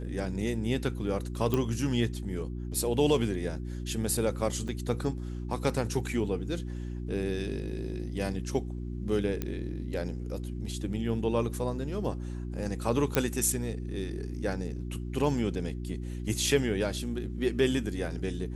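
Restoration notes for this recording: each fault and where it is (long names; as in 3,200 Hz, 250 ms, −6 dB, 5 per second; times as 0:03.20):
mains hum 60 Hz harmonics 6 −36 dBFS
0:01.54: click −15 dBFS
0:04.68: drop-out 3.9 ms
0:09.42: click −17 dBFS
0:13.15: click −9 dBFS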